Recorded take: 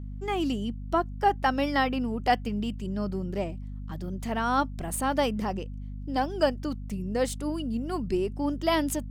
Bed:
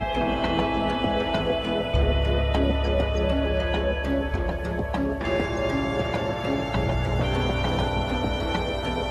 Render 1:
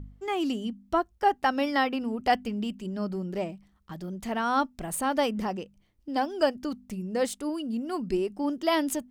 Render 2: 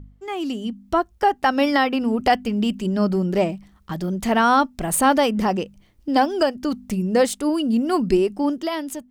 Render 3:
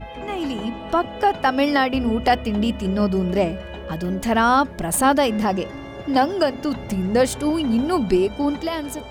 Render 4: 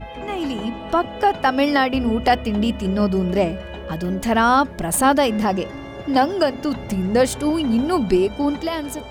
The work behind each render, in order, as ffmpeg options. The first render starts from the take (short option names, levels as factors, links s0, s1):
-af "bandreject=f=50:t=h:w=4,bandreject=f=100:t=h:w=4,bandreject=f=150:t=h:w=4,bandreject=f=200:t=h:w=4,bandreject=f=250:t=h:w=4"
-af "alimiter=limit=0.112:level=0:latency=1:release=433,dynaudnorm=f=150:g=11:m=3.76"
-filter_complex "[1:a]volume=0.335[s0];[0:a][s0]amix=inputs=2:normalize=0"
-af "volume=1.12"